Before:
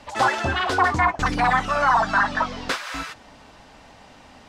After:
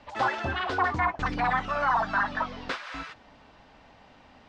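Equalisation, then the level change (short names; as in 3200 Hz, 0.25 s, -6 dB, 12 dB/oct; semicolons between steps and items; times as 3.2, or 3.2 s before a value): LPF 4100 Hz 12 dB/oct; -6.5 dB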